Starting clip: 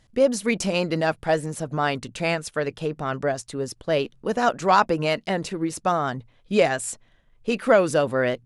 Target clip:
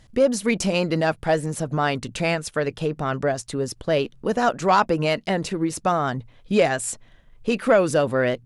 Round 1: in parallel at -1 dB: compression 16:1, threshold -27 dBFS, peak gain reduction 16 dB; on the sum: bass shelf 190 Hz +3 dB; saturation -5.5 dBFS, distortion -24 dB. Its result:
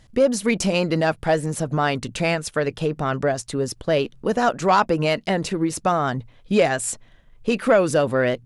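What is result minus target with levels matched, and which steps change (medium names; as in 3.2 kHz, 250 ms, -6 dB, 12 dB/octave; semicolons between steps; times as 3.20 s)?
compression: peak gain reduction -6.5 dB
change: compression 16:1, threshold -34 dBFS, peak gain reduction 22.5 dB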